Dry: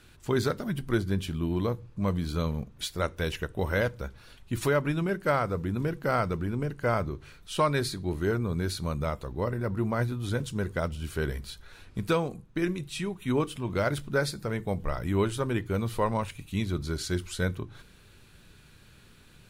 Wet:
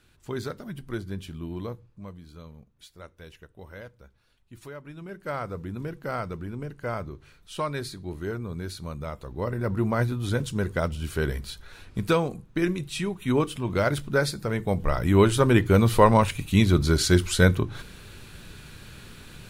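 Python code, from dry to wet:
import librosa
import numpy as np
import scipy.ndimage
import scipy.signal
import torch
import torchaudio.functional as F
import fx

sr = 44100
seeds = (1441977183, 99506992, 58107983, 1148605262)

y = fx.gain(x, sr, db=fx.line((1.73, -6.0), (2.18, -16.0), (4.83, -16.0), (5.42, -4.5), (9.07, -4.5), (9.7, 3.5), (14.49, 3.5), (15.59, 10.5)))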